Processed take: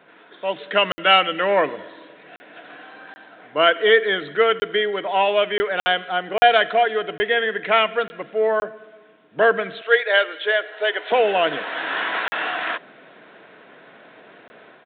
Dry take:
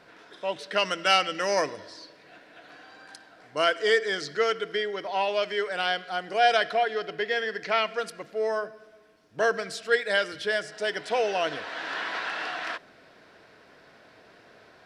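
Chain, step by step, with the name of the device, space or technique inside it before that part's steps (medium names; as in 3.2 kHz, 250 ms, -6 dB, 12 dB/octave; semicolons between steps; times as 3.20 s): 9.81–11.12 s: high-pass 410 Hz 24 dB/octave; call with lost packets (high-pass 150 Hz 24 dB/octave; resampled via 8 kHz; level rider gain up to 6 dB; lost packets of 20 ms bursts); trim +2 dB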